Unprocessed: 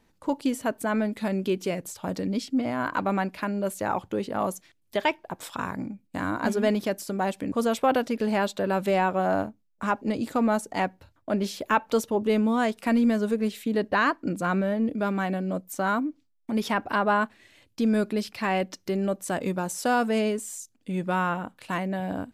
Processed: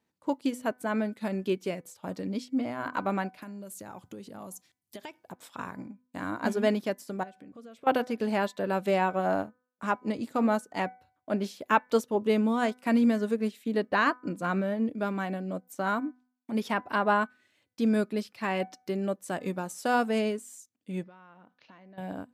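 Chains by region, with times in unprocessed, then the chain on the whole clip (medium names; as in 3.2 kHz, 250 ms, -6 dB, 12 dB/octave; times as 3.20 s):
3.42–5.33 s: tone controls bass +8 dB, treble +11 dB + compression 12:1, threshold -30 dBFS
7.23–7.87 s: low-pass 3.9 kHz 6 dB/octave + peaking EQ 900 Hz -12.5 dB 0.32 oct + compression 12:1, threshold -34 dBFS
21.03–21.98 s: steep low-pass 6.3 kHz 96 dB/octave + peaking EQ 74 Hz -7 dB 1.2 oct + compression 8:1, threshold -38 dBFS
whole clip: high-pass 110 Hz; de-hum 250.4 Hz, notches 9; upward expansion 1.5:1, over -44 dBFS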